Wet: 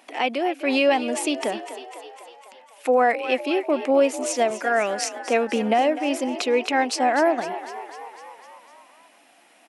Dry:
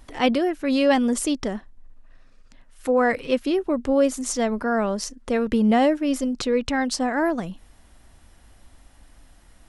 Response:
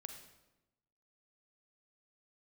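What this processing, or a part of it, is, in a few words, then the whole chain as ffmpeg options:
laptop speaker: -filter_complex "[0:a]highpass=frequency=260:width=0.5412,highpass=frequency=260:width=1.3066,equalizer=frequency=720:width_type=o:width=0.57:gain=8.5,equalizer=frequency=2500:width_type=o:width=0.53:gain=11,alimiter=limit=-10dB:level=0:latency=1:release=487,asettb=1/sr,asplit=3[link_01][link_02][link_03];[link_01]atrim=end=4.504[link_04];[link_02]atrim=start=4.5:end=5.17,asetpts=PTS-STARTPTS,afade=type=in:duration=0.004:curve=qsin,afade=type=out:start_time=0.666:duration=0.004:curve=qsin,equalizer=frequency=125:width_type=o:width=1:gain=11,equalizer=frequency=250:width_type=o:width=1:gain=-7,equalizer=frequency=1000:width_type=o:width=1:gain=-7,equalizer=frequency=2000:width_type=o:width=1:gain=10,equalizer=frequency=8000:width_type=o:width=1:gain=5[link_05];[link_03]atrim=start=5.166[link_06];[link_04][link_05]acrossfade=duration=0.004:curve1=hsin:curve2=qsin[link_07];[link_07][link_06]acrossfade=duration=0.004:curve1=qsin:curve2=hsin,asplit=8[link_08][link_09][link_10][link_11][link_12][link_13][link_14][link_15];[link_09]adelay=251,afreqshift=46,volume=-13dB[link_16];[link_10]adelay=502,afreqshift=92,volume=-16.9dB[link_17];[link_11]adelay=753,afreqshift=138,volume=-20.8dB[link_18];[link_12]adelay=1004,afreqshift=184,volume=-24.6dB[link_19];[link_13]adelay=1255,afreqshift=230,volume=-28.5dB[link_20];[link_14]adelay=1506,afreqshift=276,volume=-32.4dB[link_21];[link_15]adelay=1757,afreqshift=322,volume=-36.3dB[link_22];[link_08][link_16][link_17][link_18][link_19][link_20][link_21][link_22]amix=inputs=8:normalize=0"

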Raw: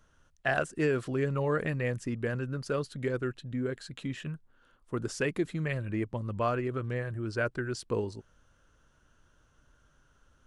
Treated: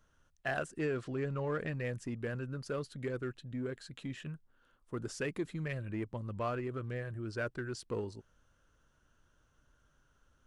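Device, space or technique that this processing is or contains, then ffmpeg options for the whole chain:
parallel distortion: -filter_complex "[0:a]asplit=2[link_01][link_02];[link_02]asoftclip=type=hard:threshold=-29.5dB,volume=-7dB[link_03];[link_01][link_03]amix=inputs=2:normalize=0,asettb=1/sr,asplit=3[link_04][link_05][link_06];[link_04]atrim=end=0.794[link_07];[link_05]atrim=start=0.79:end=1.75,asetpts=PTS-STARTPTS,afade=type=in:duration=0.004:curve=qsin,afade=type=out:start_time=0.956:duration=0.004:curve=qsin,lowpass=7300[link_08];[link_06]atrim=start=1.746[link_09];[link_07][link_08]acrossfade=duration=0.004:curve1=hsin:curve2=qsin[link_10];[link_10][link_09]acrossfade=duration=0.004:curve1=qsin:curve2=hsin,volume=-8.5dB"

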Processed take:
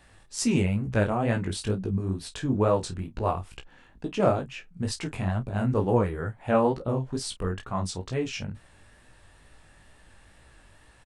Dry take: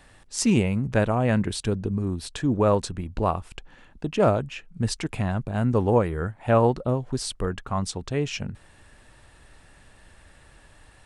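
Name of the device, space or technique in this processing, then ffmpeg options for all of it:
double-tracked vocal: -filter_complex "[0:a]asplit=2[link_01][link_02];[link_02]adelay=31,volume=-13dB[link_03];[link_01][link_03]amix=inputs=2:normalize=0,flanger=delay=16:depth=6.7:speed=2.2"

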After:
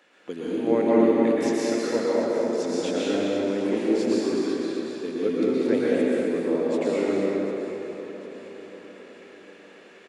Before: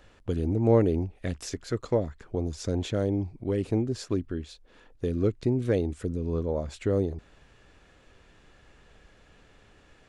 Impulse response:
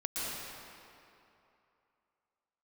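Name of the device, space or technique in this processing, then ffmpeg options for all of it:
stadium PA: -filter_complex "[0:a]highpass=frequency=230:width=0.5412,highpass=frequency=230:width=1.3066,equalizer=frequency=2200:width_type=o:width=0.95:gain=5.5,aecho=1:1:189.5|259.5:0.316|0.447[link_01];[1:a]atrim=start_sample=2205[link_02];[link_01][link_02]afir=irnorm=-1:irlink=0,aecho=1:1:747|1494|2241|2988|3735:0.2|0.0998|0.0499|0.0249|0.0125"

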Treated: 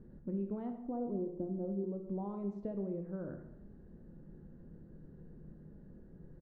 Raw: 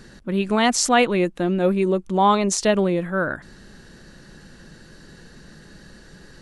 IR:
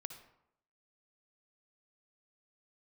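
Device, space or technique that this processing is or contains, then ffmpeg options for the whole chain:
television next door: -filter_complex "[0:a]asettb=1/sr,asplit=3[link_01][link_02][link_03];[link_01]atrim=end=0.714[link_04];[link_02]atrim=start=0.71:end=1.84,asetpts=PTS-STARTPTS,afade=type=in:duration=0.004:curve=qsin,afade=type=out:start_time=1.126:duration=0.004:curve=qsin,lowpass=frequency=1100:width=0.5412,lowpass=frequency=1100:width=1.3066[link_05];[link_03]atrim=start=1.836[link_06];[link_04][link_05]acrossfade=duration=0.004:curve1=hsin:curve2=qsin[link_07];[link_07][link_06]acrossfade=duration=0.004:curve1=qsin:curve2=hsin,acompressor=threshold=-27dB:ratio=4,lowpass=440[link_08];[1:a]atrim=start_sample=2205[link_09];[link_08][link_09]afir=irnorm=-1:irlink=0,asplit=2[link_10][link_11];[link_11]adelay=25,volume=-11dB[link_12];[link_10][link_12]amix=inputs=2:normalize=0,volume=-4dB"

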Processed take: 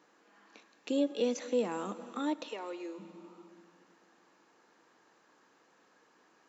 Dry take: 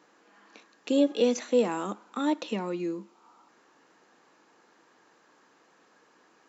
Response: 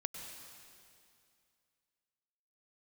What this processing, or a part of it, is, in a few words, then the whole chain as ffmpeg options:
ducked reverb: -filter_complex "[0:a]asplit=3[link_01][link_02][link_03];[1:a]atrim=start_sample=2205[link_04];[link_02][link_04]afir=irnorm=-1:irlink=0[link_05];[link_03]apad=whole_len=285781[link_06];[link_05][link_06]sidechaincompress=threshold=-29dB:ratio=8:attack=5.2:release=402,volume=-3.5dB[link_07];[link_01][link_07]amix=inputs=2:normalize=0,asplit=3[link_08][link_09][link_10];[link_08]afade=type=out:start_time=2.48:duration=0.02[link_11];[link_09]highpass=frequency=390:width=0.5412,highpass=frequency=390:width=1.3066,afade=type=in:start_time=2.48:duration=0.02,afade=type=out:start_time=2.98:duration=0.02[link_12];[link_10]afade=type=in:start_time=2.98:duration=0.02[link_13];[link_11][link_12][link_13]amix=inputs=3:normalize=0,volume=-8dB"

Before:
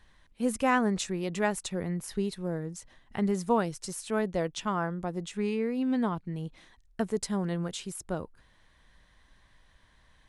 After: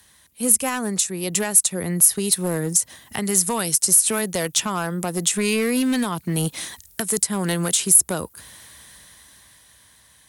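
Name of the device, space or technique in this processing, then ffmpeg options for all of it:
FM broadcast chain: -filter_complex "[0:a]highpass=frequency=66:width=0.5412,highpass=frequency=66:width=1.3066,dynaudnorm=framelen=370:gausssize=11:maxgain=15dB,acrossover=split=170|1100|2200[link_01][link_02][link_03][link_04];[link_01]acompressor=threshold=-36dB:ratio=4[link_05];[link_02]acompressor=threshold=-23dB:ratio=4[link_06];[link_03]acompressor=threshold=-29dB:ratio=4[link_07];[link_04]acompressor=threshold=-32dB:ratio=4[link_08];[link_05][link_06][link_07][link_08]amix=inputs=4:normalize=0,aemphasis=mode=production:type=50fm,alimiter=limit=-17.5dB:level=0:latency=1:release=375,asoftclip=type=hard:threshold=-21dB,lowpass=frequency=15000:width=0.5412,lowpass=frequency=15000:width=1.3066,aemphasis=mode=production:type=50fm,volume=4.5dB"

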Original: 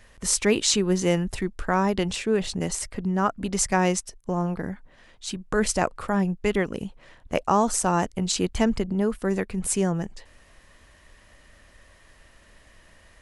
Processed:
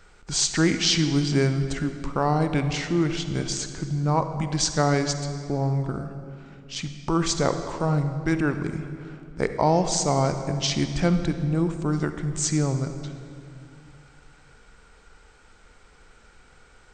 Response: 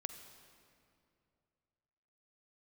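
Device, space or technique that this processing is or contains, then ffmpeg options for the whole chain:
slowed and reverbed: -filter_complex "[0:a]asetrate=34398,aresample=44100[link_01];[1:a]atrim=start_sample=2205[link_02];[link_01][link_02]afir=irnorm=-1:irlink=0,volume=2.5dB"

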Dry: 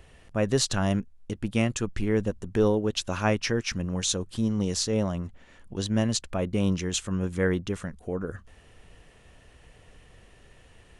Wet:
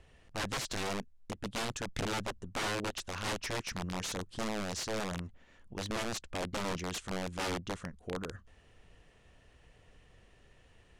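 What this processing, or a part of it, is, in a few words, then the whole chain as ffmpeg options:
overflowing digital effects unit: -af "aeval=exprs='(mod(11.9*val(0)+1,2)-1)/11.9':channel_layout=same,lowpass=8200,volume=-7.5dB"

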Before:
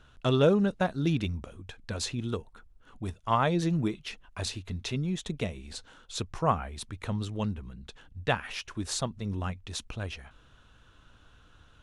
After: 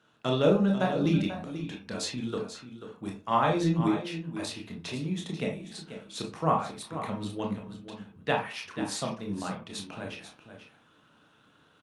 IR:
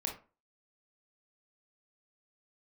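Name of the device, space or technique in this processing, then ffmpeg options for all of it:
far-field microphone of a smart speaker: -filter_complex "[0:a]asplit=3[link_01][link_02][link_03];[link_01]afade=type=out:start_time=4.91:duration=0.02[link_04];[link_02]lowshelf=frequency=320:gain=-2.5,afade=type=in:start_time=4.91:duration=0.02,afade=type=out:start_time=5.33:duration=0.02[link_05];[link_03]afade=type=in:start_time=5.33:duration=0.02[link_06];[link_04][link_05][link_06]amix=inputs=3:normalize=0,aecho=1:1:488:0.282[link_07];[1:a]atrim=start_sample=2205[link_08];[link_07][link_08]afir=irnorm=-1:irlink=0,highpass=frequency=140:width=0.5412,highpass=frequency=140:width=1.3066,dynaudnorm=framelen=130:gausssize=3:maxgain=5dB,volume=-5.5dB" -ar 48000 -c:a libopus -b:a 48k

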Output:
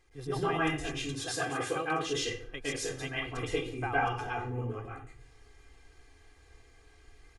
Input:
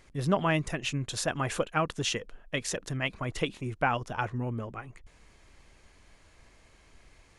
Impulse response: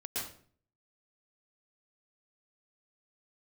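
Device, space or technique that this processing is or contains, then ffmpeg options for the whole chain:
microphone above a desk: -filter_complex "[0:a]asettb=1/sr,asplit=3[link_01][link_02][link_03];[link_01]atrim=end=0.944[link_04];[link_02]atrim=start=0.94:end=2.09,asetpts=PTS-STARTPTS,afade=type=in:duration=0.004:curve=qsin,afade=type=out:start_time=1.146:duration=0.004:curve=qsin,highpass=130[link_05];[link_03]atrim=start=2.086[link_06];[link_04][link_05]acrossfade=duration=0.004:curve1=hsin:curve2=qsin[link_07];[link_07][link_06]acrossfade=duration=0.004:curve1=qsin:curve2=hsin,aecho=1:1:2.5:0.87[link_08];[1:a]atrim=start_sample=2205[link_09];[link_08][link_09]afir=irnorm=-1:irlink=0,volume=-6.5dB"

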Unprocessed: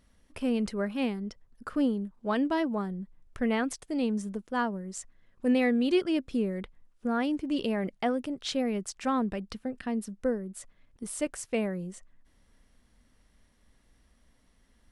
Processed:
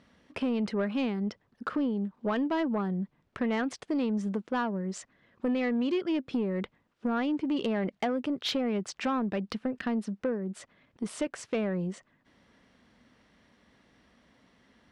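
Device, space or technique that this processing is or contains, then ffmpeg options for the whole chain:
AM radio: -af "highpass=140,lowpass=4000,acompressor=threshold=-33dB:ratio=5,asoftclip=type=tanh:threshold=-29.5dB,volume=8dB"

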